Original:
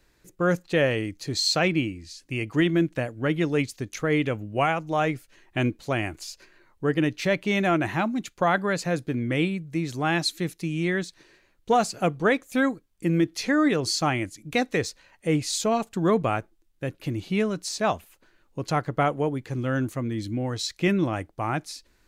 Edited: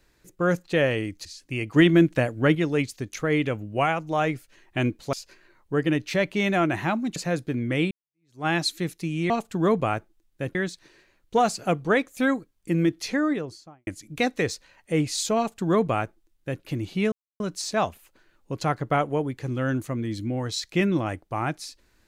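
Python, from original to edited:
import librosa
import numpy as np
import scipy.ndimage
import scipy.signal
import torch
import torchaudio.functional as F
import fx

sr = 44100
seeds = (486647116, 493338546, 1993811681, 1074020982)

y = fx.studio_fade_out(x, sr, start_s=13.29, length_s=0.93)
y = fx.edit(y, sr, fx.cut(start_s=1.25, length_s=0.8),
    fx.clip_gain(start_s=2.56, length_s=0.79, db=5.0),
    fx.cut(start_s=5.93, length_s=0.31),
    fx.cut(start_s=8.27, length_s=0.49),
    fx.fade_in_span(start_s=9.51, length_s=0.55, curve='exp'),
    fx.duplicate(start_s=15.72, length_s=1.25, to_s=10.9),
    fx.insert_silence(at_s=17.47, length_s=0.28), tone=tone)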